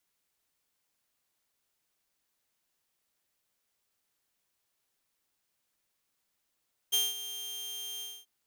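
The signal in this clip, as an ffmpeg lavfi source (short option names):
-f lavfi -i "aevalsrc='0.0891*(2*mod(3180*t,1)-1)':d=1.335:s=44100,afade=t=in:d=0.019,afade=t=out:st=0.019:d=0.196:silence=0.2,afade=t=out:st=1.09:d=0.245"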